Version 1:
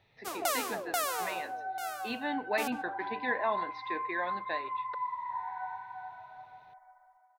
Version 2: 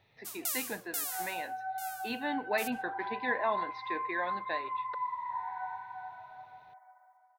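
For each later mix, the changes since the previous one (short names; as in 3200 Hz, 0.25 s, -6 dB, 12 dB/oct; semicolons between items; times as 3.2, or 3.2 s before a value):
first sound: add pre-emphasis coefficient 0.97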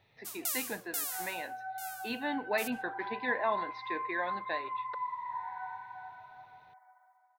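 second sound: add HPF 800 Hz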